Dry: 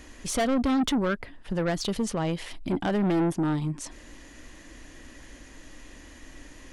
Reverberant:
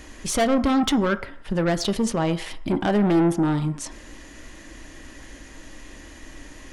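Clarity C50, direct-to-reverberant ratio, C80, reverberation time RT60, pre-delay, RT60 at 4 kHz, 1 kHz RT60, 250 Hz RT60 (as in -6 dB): 15.5 dB, 10.0 dB, 18.5 dB, 0.60 s, 3 ms, 0.65 s, 0.60 s, 0.40 s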